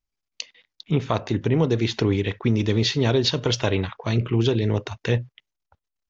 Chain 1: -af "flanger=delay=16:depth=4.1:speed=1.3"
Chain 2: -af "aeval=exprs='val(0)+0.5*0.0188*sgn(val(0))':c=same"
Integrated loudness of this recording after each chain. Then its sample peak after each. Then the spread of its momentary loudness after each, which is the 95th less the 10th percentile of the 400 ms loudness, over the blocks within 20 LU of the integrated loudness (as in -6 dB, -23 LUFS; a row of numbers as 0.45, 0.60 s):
-26.0, -22.5 LUFS; -9.5, -6.5 dBFS; 7, 14 LU